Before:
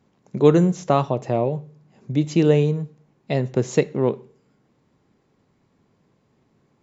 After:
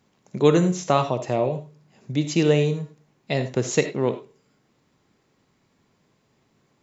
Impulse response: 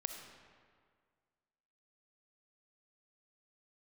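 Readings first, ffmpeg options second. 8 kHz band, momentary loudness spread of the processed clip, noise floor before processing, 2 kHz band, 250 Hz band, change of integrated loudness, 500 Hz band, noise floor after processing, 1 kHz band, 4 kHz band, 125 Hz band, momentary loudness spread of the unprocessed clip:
no reading, 13 LU, -65 dBFS, +3.5 dB, -2.5 dB, -2.0 dB, -2.0 dB, -67 dBFS, -0.5 dB, +5.0 dB, -3.0 dB, 13 LU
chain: -filter_complex "[0:a]tiltshelf=f=1400:g=-4.5[s0];[1:a]atrim=start_sample=2205,afade=t=out:st=0.15:d=0.01,atrim=end_sample=7056[s1];[s0][s1]afir=irnorm=-1:irlink=0,volume=1.41"

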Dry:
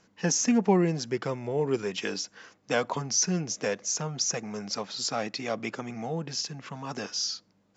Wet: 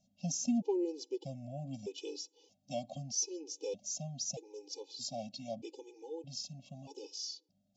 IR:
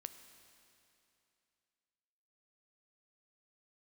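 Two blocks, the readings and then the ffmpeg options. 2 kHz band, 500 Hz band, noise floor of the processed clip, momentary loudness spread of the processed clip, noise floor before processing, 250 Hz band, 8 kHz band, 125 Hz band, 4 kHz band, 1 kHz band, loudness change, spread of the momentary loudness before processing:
-26.0 dB, -10.0 dB, -77 dBFS, 12 LU, -67 dBFS, -9.5 dB, no reading, -11.5 dB, -10.5 dB, -15.5 dB, -10.5 dB, 12 LU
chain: -af "asuperstop=centerf=1500:order=8:qfactor=0.72,afftfilt=real='re*gt(sin(2*PI*0.8*pts/sr)*(1-2*mod(floor(b*sr/1024/260),2)),0)':imag='im*gt(sin(2*PI*0.8*pts/sr)*(1-2*mod(floor(b*sr/1024/260),2)),0)':win_size=1024:overlap=0.75,volume=0.422"

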